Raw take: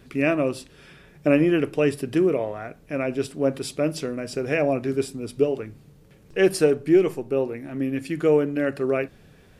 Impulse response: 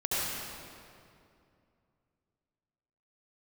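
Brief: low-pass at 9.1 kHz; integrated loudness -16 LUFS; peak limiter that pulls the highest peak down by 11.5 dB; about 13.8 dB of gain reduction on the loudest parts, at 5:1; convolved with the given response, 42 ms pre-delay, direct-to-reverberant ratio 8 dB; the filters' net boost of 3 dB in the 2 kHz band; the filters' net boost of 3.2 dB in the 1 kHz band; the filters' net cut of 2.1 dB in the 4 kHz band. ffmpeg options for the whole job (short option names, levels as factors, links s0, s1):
-filter_complex "[0:a]lowpass=9100,equalizer=f=1000:t=o:g=4,equalizer=f=2000:t=o:g=4,equalizer=f=4000:t=o:g=-5,acompressor=threshold=0.0398:ratio=5,alimiter=level_in=1.33:limit=0.0631:level=0:latency=1,volume=0.75,asplit=2[s0][s1];[1:a]atrim=start_sample=2205,adelay=42[s2];[s1][s2]afir=irnorm=-1:irlink=0,volume=0.133[s3];[s0][s3]amix=inputs=2:normalize=0,volume=10.6"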